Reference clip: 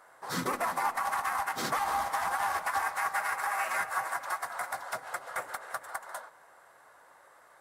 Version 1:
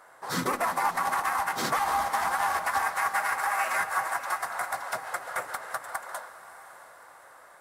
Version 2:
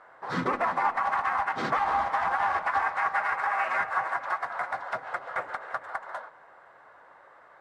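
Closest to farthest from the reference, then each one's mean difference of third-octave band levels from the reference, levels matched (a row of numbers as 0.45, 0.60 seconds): 1, 2; 1.5, 5.5 decibels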